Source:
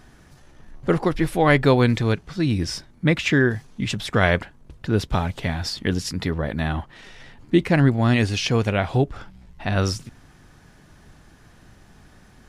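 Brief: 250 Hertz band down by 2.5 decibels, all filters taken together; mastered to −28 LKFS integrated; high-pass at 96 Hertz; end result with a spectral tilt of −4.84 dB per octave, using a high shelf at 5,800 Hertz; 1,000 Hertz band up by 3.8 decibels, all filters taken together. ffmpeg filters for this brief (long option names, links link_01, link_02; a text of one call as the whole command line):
ffmpeg -i in.wav -af "highpass=96,equalizer=frequency=250:width_type=o:gain=-3.5,equalizer=frequency=1000:width_type=o:gain=5,highshelf=frequency=5800:gain=9,volume=-6dB" out.wav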